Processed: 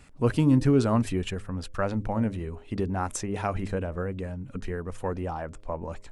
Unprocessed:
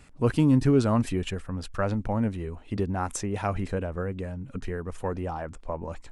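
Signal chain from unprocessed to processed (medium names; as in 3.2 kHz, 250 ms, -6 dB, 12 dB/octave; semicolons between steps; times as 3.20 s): de-hum 102.4 Hz, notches 6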